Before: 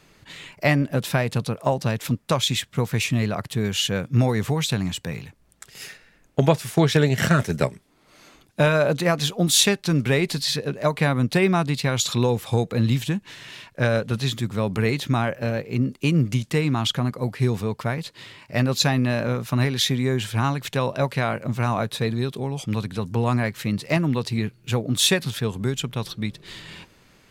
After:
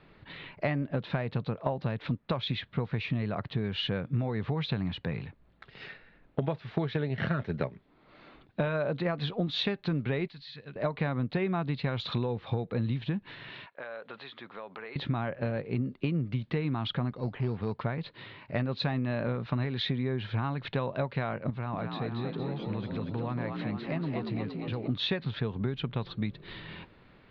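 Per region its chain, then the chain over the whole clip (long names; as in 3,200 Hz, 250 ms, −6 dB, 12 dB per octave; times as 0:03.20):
0:10.28–0:10.76: guitar amp tone stack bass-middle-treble 5-5-5 + downward compressor 2 to 1, threshold −36 dBFS
0:13.66–0:14.96: high-pass filter 700 Hz + high-shelf EQ 4,300 Hz −10.5 dB + downward compressor 5 to 1, threshold −36 dBFS
0:17.11–0:17.76: Butterworth low-pass 9,300 Hz 48 dB per octave + transient designer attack −7 dB, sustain −2 dB + sample-rate reduction 4,900 Hz
0:21.50–0:24.88: downward compressor 2 to 1, threshold −35 dBFS + echo with shifted repeats 232 ms, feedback 55%, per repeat +53 Hz, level −4.5 dB
whole clip: elliptic low-pass filter 4,100 Hz, stop band 70 dB; high-shelf EQ 2,900 Hz −11 dB; downward compressor, threshold −27 dBFS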